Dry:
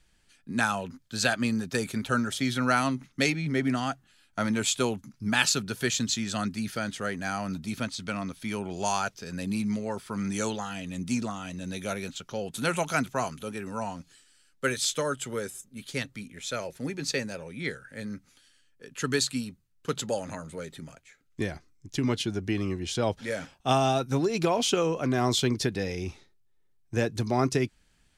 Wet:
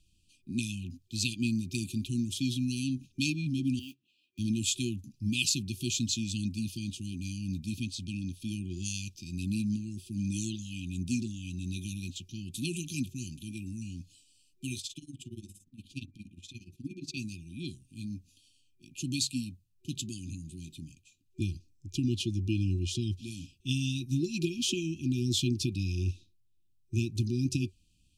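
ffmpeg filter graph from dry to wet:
-filter_complex "[0:a]asettb=1/sr,asplit=3[a][b][c];[a]atrim=end=3.794[d];[b]atrim=start=3.79:end=4.39,asetpts=PTS-STARTPTS,afade=t=in:d=0.004:c=qsin,afade=t=out:st=0.596:d=0.004:c=qsin,highpass=400,lowpass=2.8k,acrusher=bits=6:mode=log:mix=0:aa=0.000001[e];[c]atrim=start=4.386[f];[d][e]acrossfade=d=0.004:c1=hsin:c2=qsin[g];[g][f]acrossfade=d=0.004:c1=qsin:c2=hsin,asettb=1/sr,asplit=3[h][i][j];[h]atrim=end=14.804[k];[i]atrim=start=14.8:end=17.17,asetpts=PTS-STARTPTS,afade=t=in:d=0.004:c=qsin,afade=t=out:st=2.366:d=0.004:c=qsin,highshelf=f=4.3k:g=-10.5,bandreject=f=50:t=h:w=6,bandreject=f=100:t=h:w=6,bandreject=f=150:t=h:w=6,bandreject=f=200:t=h:w=6,bandreject=f=250:t=h:w=6,bandreject=f=300:t=h:w=6,bandreject=f=350:t=h:w=6,bandreject=f=400:t=h:w=6,tremolo=f=17:d=0.88[l];[j]atrim=start=17.166[m];[k][l]acrossfade=d=0.004:c1=hsin:c2=qsin[n];[n][m]acrossfade=d=0.004:c1=qsin:c2=hsin,afftfilt=real='re*(1-between(b*sr/4096,370,2400))':imag='im*(1-between(b*sr/4096,370,2400))':win_size=4096:overlap=0.75,equalizer=f=92:t=o:w=0.47:g=11,volume=-3dB"

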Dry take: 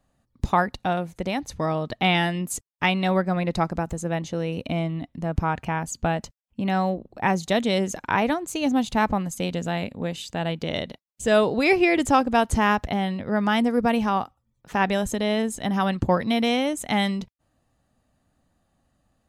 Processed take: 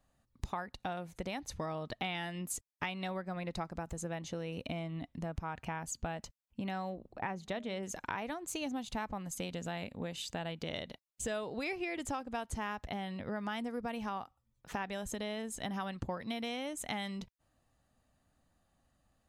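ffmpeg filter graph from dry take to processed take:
-filter_complex "[0:a]asettb=1/sr,asplit=3[a][b][c];[a]atrim=end=7.134[d];[b]atrim=start=7.13:end=7.83,asetpts=PTS-STARTPTS,afade=t=in:d=0.004:c=qsin,afade=t=out:st=0.696:d=0.004:c=qsin,bass=f=250:g=0,treble=f=4k:g=-13,bandreject=f=206.1:t=h:w=4,bandreject=f=412.2:t=h:w=4,bandreject=f=618.3:t=h:w=4[e];[c]atrim=start=7.826[f];[d][e]acrossfade=d=0.004:c1=hsin:c2=qsin[g];[g][f]acrossfade=d=0.004:c1=qsin:c2=hsin,equalizer=f=230:w=0.41:g=-4,acompressor=threshold=-32dB:ratio=6,volume=-3.5dB"

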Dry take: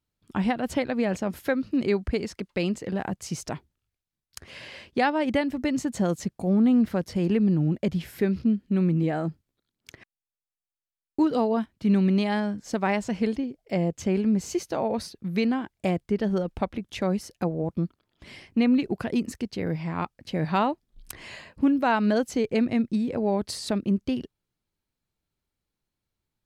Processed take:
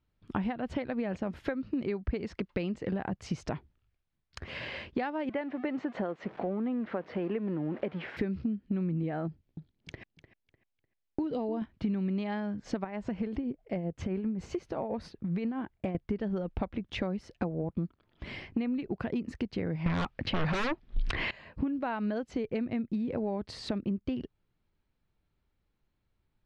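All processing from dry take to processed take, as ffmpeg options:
-filter_complex "[0:a]asettb=1/sr,asplit=3[a][b][c];[a]atrim=end=5.294[d];[b]atrim=start=5.29:end=8.17,asetpts=PTS-STARTPTS,afade=t=in:d=0.004:c=qsin,afade=t=out:st=2.876:d=0.004:c=qsin,aeval=exprs='val(0)+0.5*0.0112*sgn(val(0))':c=same,highpass=370,lowpass=2.3k[e];[c]atrim=start=8.166[f];[d][e]acrossfade=d=0.004:c1=hsin:c2=qsin[g];[g][f]acrossfade=d=0.004:c1=qsin:c2=hsin,asettb=1/sr,asplit=3[h][i][j];[h]atrim=end=9.274[k];[i]atrim=start=9.27:end=11.62,asetpts=PTS-STARTPTS,afade=t=in:d=0.004:c=qsin,afade=t=out:st=2.346:d=0.004:c=qsin,equalizer=f=1.3k:w=1.6:g=-7.5,acompressor=threshold=-31dB:ratio=2:attack=3.2:release=140:knee=1:detection=peak,asplit=2[l][m];[m]adelay=300,lowpass=f=4.8k:p=1,volume=-13.5dB,asplit=2[n][o];[o]adelay=300,lowpass=f=4.8k:p=1,volume=0.31,asplit=2[p][q];[q]adelay=300,lowpass=f=4.8k:p=1,volume=0.31[r];[l][n][p][r]amix=inputs=4:normalize=0,atrim=end_sample=103635[s];[j]atrim=start=11.616[t];[k][s]acrossfade=d=0.004:c1=hsin:c2=qsin[u];[u][t]acrossfade=d=0.004:c1=qsin:c2=hsin,asettb=1/sr,asplit=3[v][w][x];[v]atrim=end=12.844[y];[w]atrim=start=12.84:end=15.95,asetpts=PTS-STARTPTS,afade=t=in:d=0.004:c=qsin,afade=t=out:st=3.106:d=0.004:c=qsin,equalizer=f=5k:w=0.59:g=-5,acompressor=threshold=-31dB:ratio=2.5:attack=3.2:release=140:knee=1:detection=peak,tremolo=f=7.6:d=0.5[z];[x]atrim=start=15.946[aa];[y][z]acrossfade=d=0.004:c1=hsin:c2=qsin[ab];[ab][aa]acrossfade=d=0.004:c1=qsin:c2=hsin,asettb=1/sr,asplit=3[ac][ad][ae];[ac]atrim=end=19.864[af];[ad]atrim=start=19.86:end=21.31,asetpts=PTS-STARTPTS,afade=t=in:d=0.004:c=qsin,afade=t=out:st=1.446:d=0.004:c=qsin,lowpass=3.2k,highshelf=f=2.4k:g=10,aeval=exprs='0.316*sin(PI/2*7.08*val(0)/0.316)':c=same[ag];[ae]atrim=start=21.306[ah];[af][ag]acrossfade=d=0.004:c1=hsin:c2=qsin[ai];[ai][ah]acrossfade=d=0.004:c1=qsin:c2=hsin,acompressor=threshold=-34dB:ratio=12,lowpass=3k,lowshelf=f=74:g=7,volume=4.5dB"

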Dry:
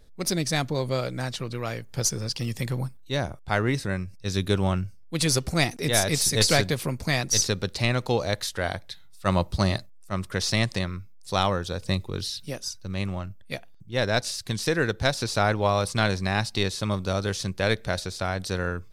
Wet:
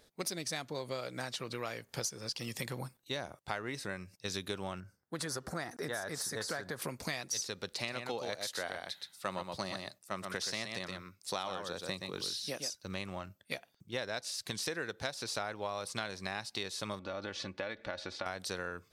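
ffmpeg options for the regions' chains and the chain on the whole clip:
-filter_complex "[0:a]asettb=1/sr,asplit=3[a][b][c];[a]atrim=end=4.804[d];[b]atrim=start=4.8:end=6.82,asetpts=PTS-STARTPTS,afade=t=in:d=0.004:c=qsin,afade=t=out:st=2.016:d=0.004:c=qsin,highshelf=f=2k:t=q:w=3:g=-6.5,acompressor=threshold=-28dB:ratio=2:attack=3.2:release=140:knee=1:detection=peak[e];[c]atrim=start=6.816[f];[d][e]acrossfade=d=0.004:c1=hsin:c2=qsin[g];[g][f]acrossfade=d=0.004:c1=qsin:c2=hsin,asettb=1/sr,asplit=3[h][i][j];[h]atrim=end=7.724[k];[i]atrim=start=7.72:end=12.75,asetpts=PTS-STARTPTS,afade=t=in:d=0.004:c=qsin,afade=t=out:st=5.026:d=0.004:c=qsin,highpass=110,aecho=1:1:122:0.473,atrim=end_sample=221823[l];[j]atrim=start=12.746[m];[k][l]acrossfade=d=0.004:c1=hsin:c2=qsin[n];[n][m]acrossfade=d=0.004:c1=qsin:c2=hsin,asettb=1/sr,asplit=3[o][p][q];[o]atrim=end=16.994[r];[p]atrim=start=16.99:end=18.26,asetpts=PTS-STARTPTS,afade=t=in:d=0.004:c=qsin,afade=t=out:st=1.266:d=0.004:c=qsin,lowpass=2.9k,acompressor=threshold=-30dB:ratio=4:attack=3.2:release=140:knee=1:detection=peak,aecho=1:1:3.5:0.51,atrim=end_sample=56007[s];[q]atrim=start=18.256[t];[r][s]acrossfade=d=0.004:c1=hsin:c2=qsin[u];[u][t]acrossfade=d=0.004:c1=qsin:c2=hsin,highpass=f=450:p=1,acompressor=threshold=-36dB:ratio=6,volume=1dB"

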